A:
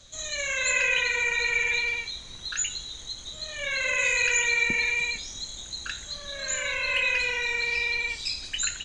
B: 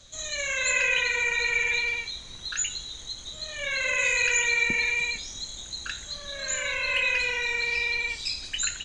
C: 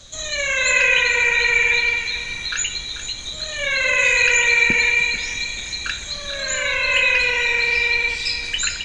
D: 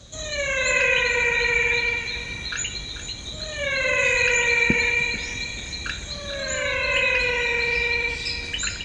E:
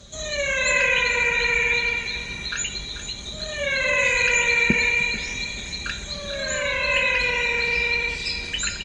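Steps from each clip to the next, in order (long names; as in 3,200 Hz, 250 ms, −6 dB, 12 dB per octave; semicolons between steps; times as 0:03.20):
no processing that can be heard
dynamic equaliser 7,700 Hz, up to −5 dB, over −42 dBFS, Q 1.1; feedback echo with a high-pass in the loop 439 ms, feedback 47%, high-pass 580 Hz, level −11 dB; level +8.5 dB
high-pass filter 51 Hz; tilt shelving filter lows +5.5 dB, about 700 Hz
comb filter 5 ms, depth 35%; Opus 64 kbit/s 48,000 Hz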